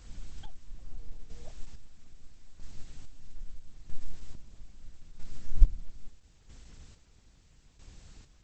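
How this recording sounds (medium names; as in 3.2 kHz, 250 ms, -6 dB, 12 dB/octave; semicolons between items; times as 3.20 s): a quantiser's noise floor 10-bit, dither triangular; chopped level 0.77 Hz, depth 60%, duty 35%; Opus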